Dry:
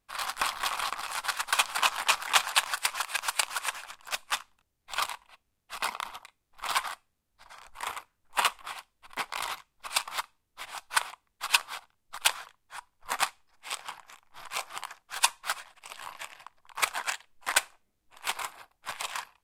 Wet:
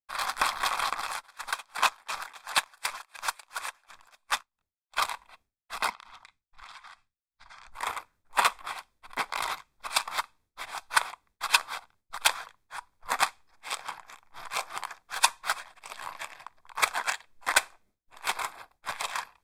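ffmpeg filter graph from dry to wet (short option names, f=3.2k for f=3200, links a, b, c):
-filter_complex "[0:a]asettb=1/sr,asplit=3[a][b][c];[a]atrim=end=1.124[d];[b]atrim=start=1.12:end=4.97,asetpts=PTS-STARTPTS,afade=t=in:d=0.004:c=qsin,afade=t=out:st=3.846:d=0.004:c=qsin,volume=9.5dB,asoftclip=hard,volume=-9.5dB,aeval=exprs='val(0)*pow(10,-28*(0.5-0.5*cos(2*PI*2.8*n/s))/20)':c=same[e];[c]atrim=start=4.966[f];[d][e]acrossfade=d=0.004:c1=hsin:c2=qsin[g];[g][f]acrossfade=d=0.004:c1=qsin:c2=hsin,asettb=1/sr,asplit=3[h][i][j];[h]atrim=end=5.904[k];[i]atrim=start=5.9:end=7.72,asetpts=PTS-STARTPTS,afade=t=in:d=0.004:c=qsin,afade=t=out:st=1.816:d=0.004:c=qsin,lowpass=6.6k,equalizer=f=470:w=0.86:g=-12,acompressor=threshold=-46dB:ratio=10:attack=3.2:release=140:knee=1:detection=peak[l];[j]atrim=start=7.716[m];[k][l]acrossfade=d=0.004:c1=hsin:c2=qsin[n];[n][m]acrossfade=d=0.004:c1=qsin:c2=hsin,agate=range=-33dB:threshold=-60dB:ratio=3:detection=peak,highshelf=f=5.9k:g=-5,bandreject=f=2.9k:w=6.2,volume=3.5dB"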